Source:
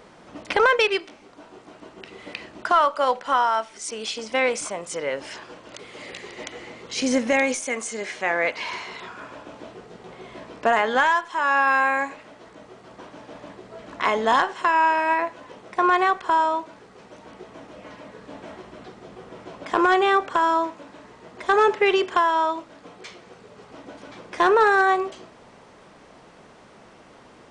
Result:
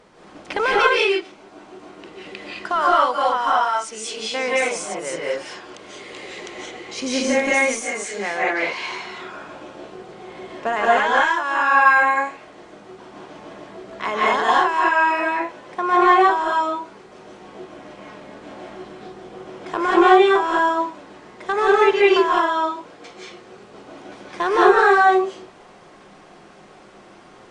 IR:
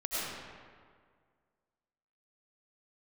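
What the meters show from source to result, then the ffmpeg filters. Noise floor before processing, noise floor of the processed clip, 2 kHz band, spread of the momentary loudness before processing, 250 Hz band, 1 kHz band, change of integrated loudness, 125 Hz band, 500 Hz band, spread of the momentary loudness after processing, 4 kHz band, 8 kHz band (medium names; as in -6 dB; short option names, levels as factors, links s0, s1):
-50 dBFS, -46 dBFS, +3.5 dB, 21 LU, +4.5 dB, +3.5 dB, +3.5 dB, no reading, +4.0 dB, 23 LU, +3.0 dB, +2.5 dB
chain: -filter_complex "[1:a]atrim=start_sample=2205,afade=t=out:st=0.18:d=0.01,atrim=end_sample=8379,asetrate=25137,aresample=44100[s0];[0:a][s0]afir=irnorm=-1:irlink=0,volume=0.668"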